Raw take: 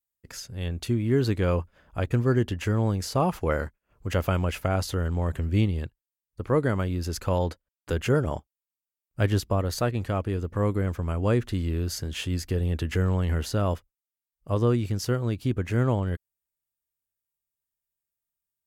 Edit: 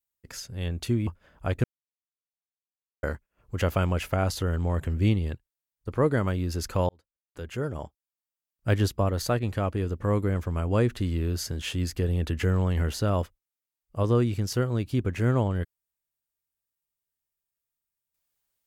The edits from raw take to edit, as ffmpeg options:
-filter_complex "[0:a]asplit=5[a][b][c][d][e];[a]atrim=end=1.072[f];[b]atrim=start=1.588:end=2.16,asetpts=PTS-STARTPTS,afade=t=out:st=0.568:d=0.004:c=hsin[g];[c]atrim=start=2.16:end=3.55,asetpts=PTS-STARTPTS,volume=0[h];[d]atrim=start=3.55:end=7.41,asetpts=PTS-STARTPTS,afade=t=in:d=0.004:c=hsin,afade=t=out:st=3.856:d=0.004:c=hsin[i];[e]atrim=start=7.41,asetpts=PTS-STARTPTS,afade=t=in:d=1.83[j];[g][h][i][j]concat=n=4:v=0:a=1[k];[f][k]acrossfade=d=0.004:c1=hsin:c2=hsin"

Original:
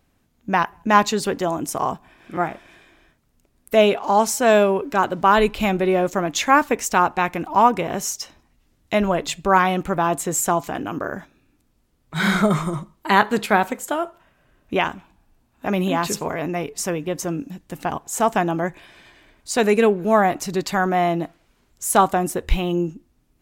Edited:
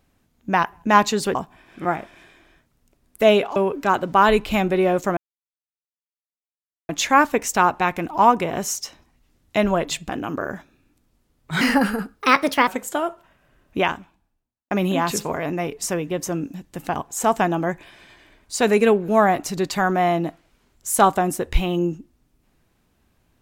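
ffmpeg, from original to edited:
-filter_complex "[0:a]asplit=8[a][b][c][d][e][f][g][h];[a]atrim=end=1.352[i];[b]atrim=start=1.868:end=4.082[j];[c]atrim=start=4.648:end=6.26,asetpts=PTS-STARTPTS,afade=t=out:st=1.608:d=0.004:c=hsin,apad=pad_dur=1.72[k];[d]atrim=start=6.26:end=9.462,asetpts=PTS-STARTPTS,afade=t=in:d=0.004:c=hsin[l];[e]atrim=start=10.718:end=12.244[m];[f]atrim=start=12.24:end=13.64,asetpts=PTS-STARTPTS,asetrate=57771,aresample=44100[n];[g]atrim=start=13.636:end=15.67,asetpts=PTS-STARTPTS,afade=t=out:st=1.194:d=0.84:c=qua[o];[h]atrim=start=15.67,asetpts=PTS-STARTPTS,afade=t=in:d=0.004:c=hsin[p];[i][j]acrossfade=d=0.004:c1=hsin:c2=hsin[q];[k][l]concat=n=2:v=0:a=1[r];[q][r]acrossfade=d=0.004:c1=hsin:c2=hsin[s];[s][m]acrossfade=d=0.004:c1=hsin:c2=hsin[t];[t][n]acrossfade=d=0.004:c1=hsin:c2=hsin[u];[o][p]concat=n=2:v=0:a=1[v];[u][v]acrossfade=d=0.004:c1=hsin:c2=hsin"

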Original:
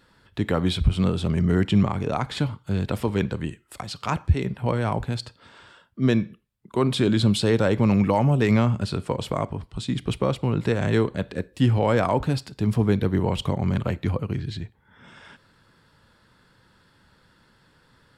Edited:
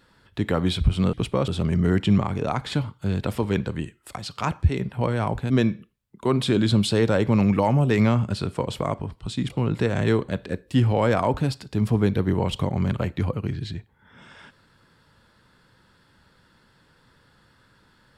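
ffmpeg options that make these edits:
-filter_complex "[0:a]asplit=5[a][b][c][d][e];[a]atrim=end=1.132[f];[b]atrim=start=10.008:end=10.362[g];[c]atrim=start=1.128:end=5.152[h];[d]atrim=start=6.008:end=10.012[i];[e]atrim=start=10.358[j];[f][g]acrossfade=d=0.004:c1=hsin:c2=hsin[k];[k][h]acrossfade=d=0.004:c1=hsin:c2=hsin[l];[l][i]acrossfade=d=0.004:c1=hsin:c2=hsin[m];[m][j]acrossfade=d=0.004:c1=hsin:c2=hsin"

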